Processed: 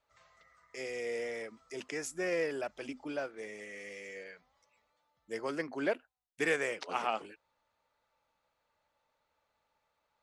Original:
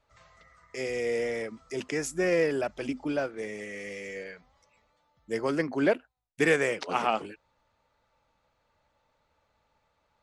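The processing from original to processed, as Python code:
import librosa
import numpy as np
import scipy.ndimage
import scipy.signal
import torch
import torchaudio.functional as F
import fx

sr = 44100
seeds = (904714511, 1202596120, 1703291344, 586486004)

y = fx.low_shelf(x, sr, hz=250.0, db=-10.5)
y = y * librosa.db_to_amplitude(-5.5)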